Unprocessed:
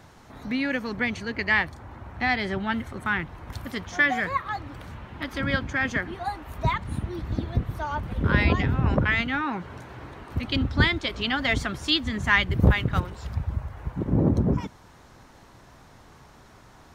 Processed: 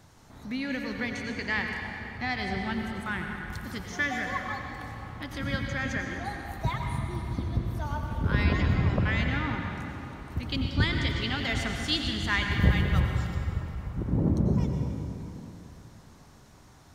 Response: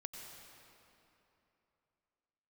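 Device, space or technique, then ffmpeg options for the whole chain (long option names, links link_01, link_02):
swimming-pool hall: -filter_complex "[1:a]atrim=start_sample=2205[link_01];[0:a][link_01]afir=irnorm=-1:irlink=0,bass=frequency=250:gain=4,treble=frequency=4000:gain=13,highshelf=frequency=4900:gain=-7.5,volume=-2.5dB"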